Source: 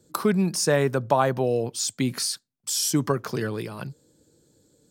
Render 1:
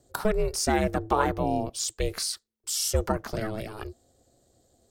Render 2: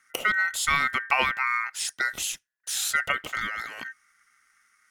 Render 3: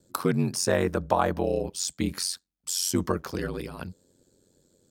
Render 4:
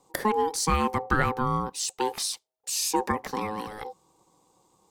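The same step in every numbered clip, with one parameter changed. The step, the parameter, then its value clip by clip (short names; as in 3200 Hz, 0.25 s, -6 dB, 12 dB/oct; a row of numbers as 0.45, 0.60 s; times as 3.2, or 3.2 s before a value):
ring modulator, frequency: 220, 1700, 45, 640 Hz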